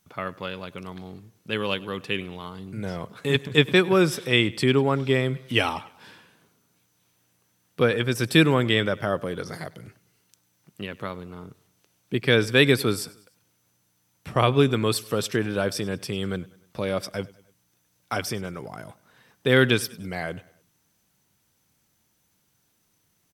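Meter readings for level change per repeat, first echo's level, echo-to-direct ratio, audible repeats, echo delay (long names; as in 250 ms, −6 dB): −6.0 dB, −22.0 dB, −21.0 dB, 3, 99 ms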